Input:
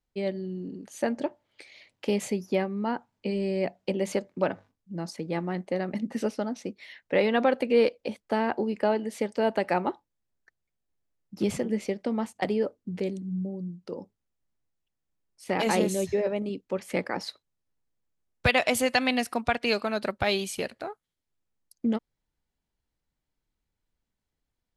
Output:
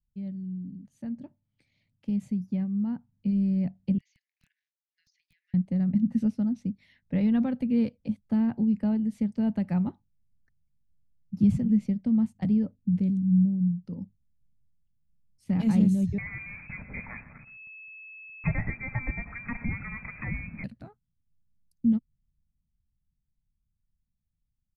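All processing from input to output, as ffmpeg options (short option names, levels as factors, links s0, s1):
-filter_complex "[0:a]asettb=1/sr,asplit=3[s0][s1][s2];[s0]atrim=end=3.984[s3];[s1]atrim=start=3.98:end=5.54,asetpts=PTS-STARTPTS,afade=t=in:d=0.004:c=qsin,afade=t=out:st=1.556:d=0.004:c=qsin,asuperpass=centerf=3400:order=20:qfactor=0.69,acompressor=threshold=0.00251:ratio=12:attack=3.2:release=140:knee=1:detection=peak,aeval=exprs='(mod(150*val(0)+1,2)-1)/150':c=same[s4];[s2]atrim=start=5.536[s5];[s3][s4]acrossfade=d=0.004:c1=hsin:c2=qsin[s6];[s6][s5]acrossfade=d=0.004:c1=qsin:c2=hsin,asettb=1/sr,asplit=3[s7][s8][s9];[s7]atrim=end=16.184[s10];[s8]atrim=start=16.18:end=20.64,asetpts=PTS-STARTPTS,afade=t=in:d=0.004:c=qsin,afade=t=out:st=4.456:d=0.004:c=qsin,aeval=exprs='val(0)+0.5*0.0501*sgn(val(0))':c=same,aecho=1:1:123:0.168,atrim=end_sample=196686,lowpass=f=2200:t=q:w=0.5098,lowpass=f=2200:t=q:w=0.6013,lowpass=f=2200:t=q:w=0.9,lowpass=f=2200:t=q:w=2.563,afreqshift=-2600[s11];[s9]atrim=start=20.636[s12];[s10][s11]acrossfade=d=0.004:c1=hsin:c2=qsin[s13];[s13][s12]acrossfade=d=0.004:c1=qsin:c2=hsin,firequalizer=gain_entry='entry(150,0);entry(240,-8);entry(360,-29)':delay=0.05:min_phase=1,dynaudnorm=f=200:g=31:m=2.82,volume=1.68"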